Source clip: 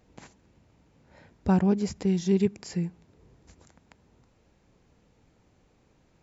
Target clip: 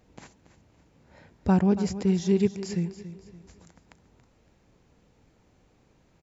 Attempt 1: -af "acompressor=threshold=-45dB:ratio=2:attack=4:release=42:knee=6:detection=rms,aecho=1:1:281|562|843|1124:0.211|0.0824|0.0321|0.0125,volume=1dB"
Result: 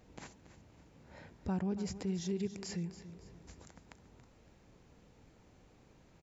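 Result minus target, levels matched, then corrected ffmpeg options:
compressor: peak gain reduction +14.5 dB
-af "aecho=1:1:281|562|843|1124:0.211|0.0824|0.0321|0.0125,volume=1dB"

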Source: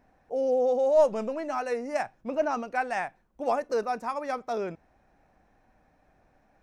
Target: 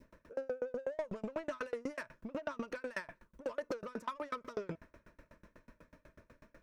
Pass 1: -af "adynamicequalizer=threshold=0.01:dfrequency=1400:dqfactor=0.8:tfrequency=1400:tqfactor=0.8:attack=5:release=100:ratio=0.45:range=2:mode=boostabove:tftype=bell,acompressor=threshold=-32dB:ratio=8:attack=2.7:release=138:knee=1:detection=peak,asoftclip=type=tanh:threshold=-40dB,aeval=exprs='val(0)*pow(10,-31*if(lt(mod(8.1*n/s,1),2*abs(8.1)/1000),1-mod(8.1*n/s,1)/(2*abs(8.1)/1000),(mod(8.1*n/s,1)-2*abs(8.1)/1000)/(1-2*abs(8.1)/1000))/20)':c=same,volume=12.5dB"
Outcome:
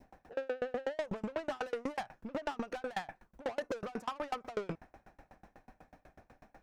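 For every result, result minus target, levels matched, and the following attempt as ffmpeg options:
compressor: peak gain reduction -6.5 dB; 1000 Hz band +3.0 dB
-af "adynamicequalizer=threshold=0.01:dfrequency=1400:dqfactor=0.8:tfrequency=1400:tqfactor=0.8:attack=5:release=100:ratio=0.45:range=2:mode=boostabove:tftype=bell,acompressor=threshold=-39dB:ratio=8:attack=2.7:release=138:knee=1:detection=peak,asoftclip=type=tanh:threshold=-40dB,aeval=exprs='val(0)*pow(10,-31*if(lt(mod(8.1*n/s,1),2*abs(8.1)/1000),1-mod(8.1*n/s,1)/(2*abs(8.1)/1000),(mod(8.1*n/s,1)-2*abs(8.1)/1000)/(1-2*abs(8.1)/1000))/20)':c=same,volume=12.5dB"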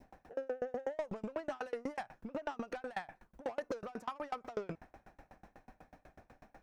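1000 Hz band +3.0 dB
-af "adynamicequalizer=threshold=0.01:dfrequency=1400:dqfactor=0.8:tfrequency=1400:tqfactor=0.8:attack=5:release=100:ratio=0.45:range=2:mode=boostabove:tftype=bell,asuperstop=centerf=770:order=12:qfactor=3.4,acompressor=threshold=-39dB:ratio=8:attack=2.7:release=138:knee=1:detection=peak,asoftclip=type=tanh:threshold=-40dB,aeval=exprs='val(0)*pow(10,-31*if(lt(mod(8.1*n/s,1),2*abs(8.1)/1000),1-mod(8.1*n/s,1)/(2*abs(8.1)/1000),(mod(8.1*n/s,1)-2*abs(8.1)/1000)/(1-2*abs(8.1)/1000))/20)':c=same,volume=12.5dB"

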